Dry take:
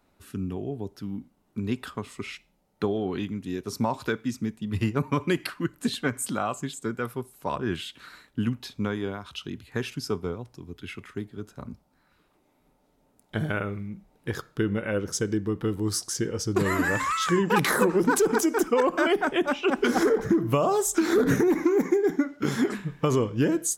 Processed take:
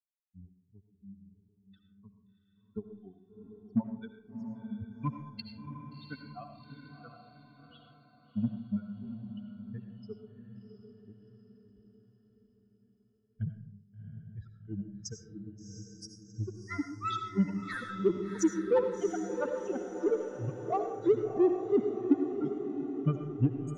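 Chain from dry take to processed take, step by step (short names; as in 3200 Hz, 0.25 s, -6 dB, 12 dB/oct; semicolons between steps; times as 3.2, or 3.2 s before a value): per-bin expansion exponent 3; steep low-pass 8500 Hz 48 dB/oct; low shelf 420 Hz +12 dB; low-pass opened by the level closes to 730 Hz, open at -30.5 dBFS; grains 0.185 s, grains 3/s, pitch spread up and down by 0 st; in parallel at -6.5 dB: soft clip -28.5 dBFS, distortion -6 dB; on the sum: diffused feedback echo 0.713 s, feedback 48%, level -7.5 dB; on a send at -7 dB: reverb RT60 0.60 s, pre-delay 45 ms; on the sum: gain -3.5 dB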